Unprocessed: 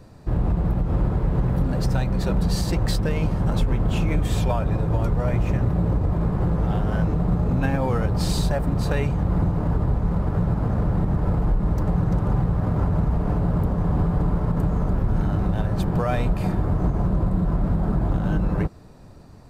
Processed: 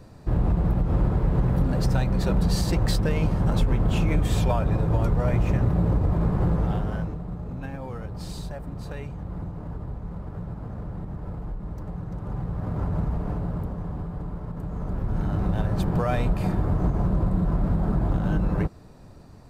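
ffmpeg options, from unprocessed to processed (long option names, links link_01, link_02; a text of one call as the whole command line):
ffmpeg -i in.wav -af "volume=17.5dB,afade=type=out:start_time=6.51:duration=0.7:silence=0.251189,afade=type=in:start_time=12.13:duration=0.87:silence=0.398107,afade=type=out:start_time=13:duration=1.01:silence=0.446684,afade=type=in:start_time=14.62:duration=0.95:silence=0.316228" out.wav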